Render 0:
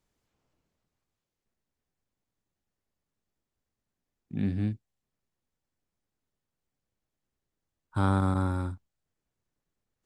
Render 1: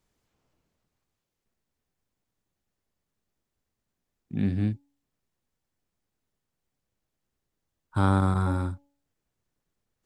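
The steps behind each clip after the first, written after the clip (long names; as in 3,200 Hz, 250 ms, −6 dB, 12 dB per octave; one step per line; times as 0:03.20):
hum removal 282.8 Hz, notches 3
level +3 dB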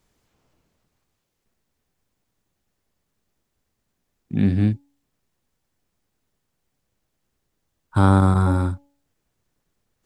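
dynamic equaliser 2,400 Hz, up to −4 dB, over −40 dBFS, Q 0.79
level +7.5 dB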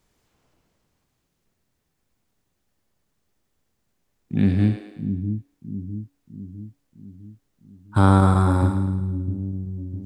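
echo with a time of its own for lows and highs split 340 Hz, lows 655 ms, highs 108 ms, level −7 dB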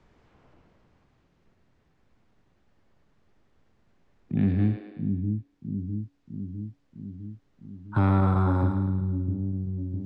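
soft clipping −6.5 dBFS, distortion −18 dB
high-frequency loss of the air 130 metres
multiband upward and downward compressor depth 40%
level −3 dB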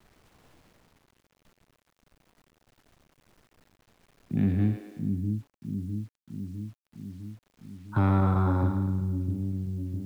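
bit reduction 10 bits
level −1.5 dB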